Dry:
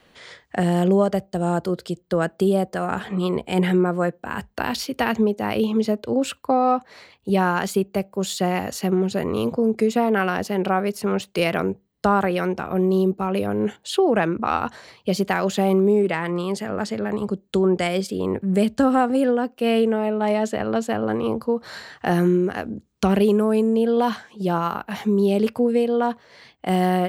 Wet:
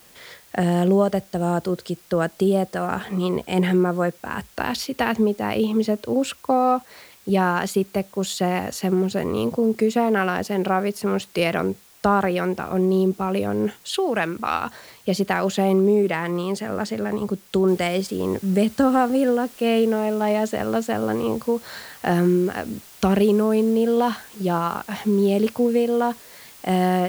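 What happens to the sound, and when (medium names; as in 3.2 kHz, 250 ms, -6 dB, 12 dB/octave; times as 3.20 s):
13.94–14.67 s: tilt shelf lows -5.5 dB, about 1.4 kHz
17.68 s: noise floor step -52 dB -46 dB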